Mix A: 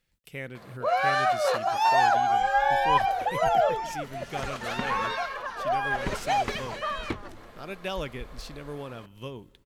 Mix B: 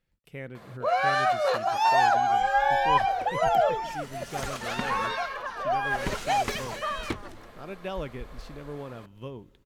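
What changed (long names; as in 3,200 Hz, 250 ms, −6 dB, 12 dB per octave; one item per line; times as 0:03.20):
speech: add high-shelf EQ 2,200 Hz −11 dB
second sound: remove low-pass filter 3,400 Hz 6 dB per octave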